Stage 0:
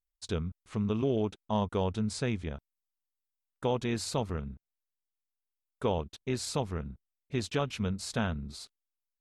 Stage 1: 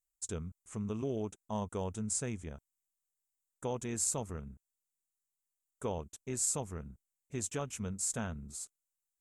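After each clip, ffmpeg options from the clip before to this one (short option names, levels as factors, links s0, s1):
-af "highshelf=f=5600:t=q:w=3:g=10.5,volume=0.447"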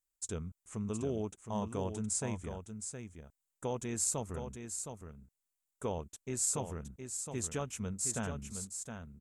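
-af "aecho=1:1:716:0.422"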